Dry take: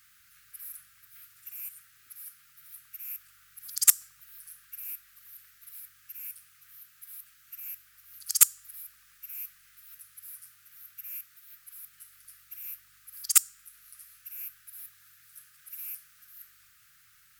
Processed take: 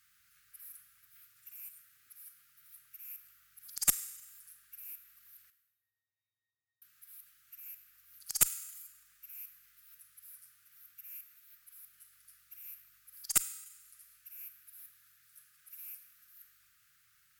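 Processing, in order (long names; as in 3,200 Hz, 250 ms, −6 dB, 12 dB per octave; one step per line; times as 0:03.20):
0:05.50–0:06.82: resonances in every octave A#, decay 0.52 s
four-comb reverb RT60 1.1 s, combs from 33 ms, DRR 11 dB
harmonic generator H 4 −19 dB, 6 −34 dB, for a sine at −1 dBFS
level −8 dB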